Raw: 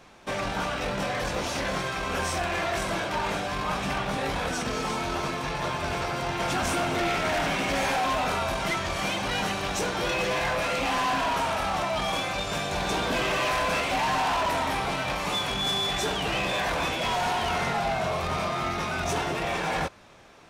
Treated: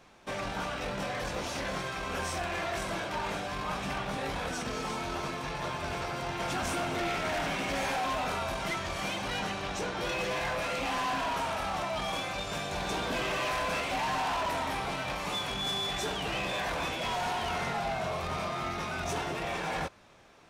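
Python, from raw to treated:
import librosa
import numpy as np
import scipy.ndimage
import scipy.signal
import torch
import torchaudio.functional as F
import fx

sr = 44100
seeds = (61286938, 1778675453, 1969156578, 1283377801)

y = fx.high_shelf(x, sr, hz=fx.line((9.38, 12000.0), (10.0, 7900.0)), db=-12.0, at=(9.38, 10.0), fade=0.02)
y = y * librosa.db_to_amplitude(-5.5)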